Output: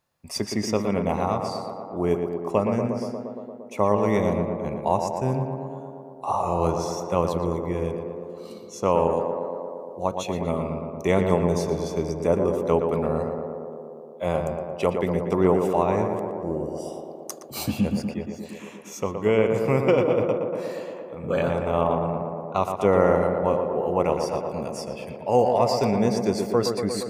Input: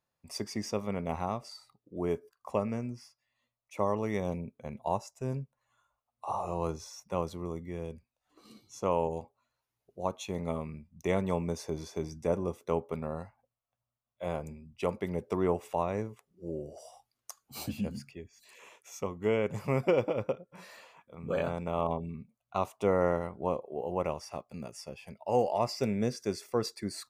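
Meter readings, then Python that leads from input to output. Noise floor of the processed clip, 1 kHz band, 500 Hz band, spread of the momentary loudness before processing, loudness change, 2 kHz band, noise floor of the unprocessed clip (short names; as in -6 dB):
-41 dBFS, +9.5 dB, +10.0 dB, 16 LU, +9.0 dB, +8.5 dB, under -85 dBFS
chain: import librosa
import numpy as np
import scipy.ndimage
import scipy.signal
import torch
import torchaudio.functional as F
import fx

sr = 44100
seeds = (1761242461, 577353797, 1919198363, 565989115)

p1 = fx.rider(x, sr, range_db=4, speed_s=2.0)
p2 = x + (p1 * librosa.db_to_amplitude(2.5))
y = fx.echo_tape(p2, sr, ms=117, feedback_pct=86, wet_db=-4.5, lp_hz=1800.0, drive_db=4.0, wow_cents=19)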